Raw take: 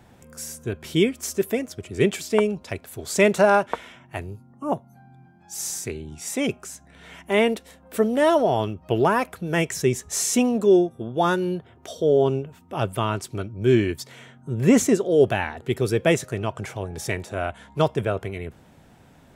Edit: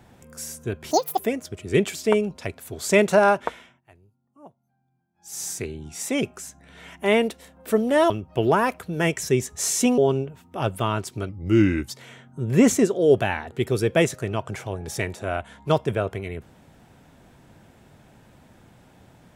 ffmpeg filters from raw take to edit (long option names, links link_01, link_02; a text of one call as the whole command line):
ffmpeg -i in.wav -filter_complex "[0:a]asplit=9[link_01][link_02][link_03][link_04][link_05][link_06][link_07][link_08][link_09];[link_01]atrim=end=0.914[link_10];[link_02]atrim=start=0.91:end=1.45,asetpts=PTS-STARTPTS,asetrate=85554,aresample=44100,atrim=end_sample=12275,asetpts=PTS-STARTPTS[link_11];[link_03]atrim=start=1.446:end=4.08,asetpts=PTS-STARTPTS,afade=type=out:start_time=2.284:duration=0.35:silence=0.0794328[link_12];[link_04]atrim=start=4.08:end=5.41,asetpts=PTS-STARTPTS,volume=-22dB[link_13];[link_05]atrim=start=5.41:end=8.362,asetpts=PTS-STARTPTS,afade=type=in:duration=0.35:silence=0.0794328[link_14];[link_06]atrim=start=8.628:end=10.512[link_15];[link_07]atrim=start=12.148:end=13.464[link_16];[link_08]atrim=start=13.46:end=14,asetpts=PTS-STARTPTS,asetrate=38808,aresample=44100,atrim=end_sample=27061,asetpts=PTS-STARTPTS[link_17];[link_09]atrim=start=13.996[link_18];[link_10][link_11]acrossfade=duration=0.004:curve1=hsin:curve2=hsin[link_19];[link_12][link_13][link_14]concat=n=3:v=0:a=1[link_20];[link_19][link_20]acrossfade=duration=0.004:curve1=hsin:curve2=hsin[link_21];[link_21][link_15]acrossfade=duration=0.004:curve1=hsin:curve2=hsin[link_22];[link_22][link_16]acrossfade=duration=0.004:curve1=hsin:curve2=hsin[link_23];[link_23][link_17]acrossfade=duration=0.004:curve1=hsin:curve2=hsin[link_24];[link_24][link_18]acrossfade=duration=0.004:curve1=hsin:curve2=hsin" out.wav